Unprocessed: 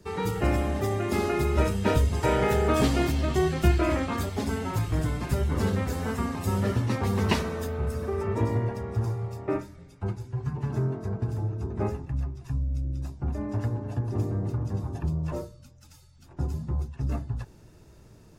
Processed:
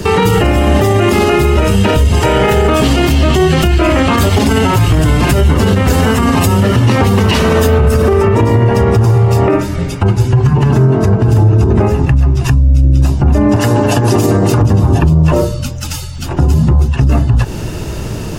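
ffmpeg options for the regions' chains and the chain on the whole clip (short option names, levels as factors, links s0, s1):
-filter_complex "[0:a]asettb=1/sr,asplit=3[s0][s1][s2];[s0]atrim=end=13.564[s3];[s1]atrim=start=13.56:end=14.62,asetpts=PTS-STARTPTS,afade=t=in:d=0.004:c=qsin,afade=t=out:st=1.056:d=0.004:c=qsin,highpass=f=330:p=1,highshelf=f=3300:g=10[s4];[s2]atrim=start=14.616[s5];[s3][s4]acrossfade=d=0.004:c1=hsin:c2=qsin[s6];[s6][s5]acrossfade=d=0.004:c1=qsin:c2=hsin,acompressor=threshold=0.0178:ratio=6,equalizer=f=2900:t=o:w=0.21:g=8.5,alimiter=level_in=44.7:limit=0.891:release=50:level=0:latency=1,volume=0.891"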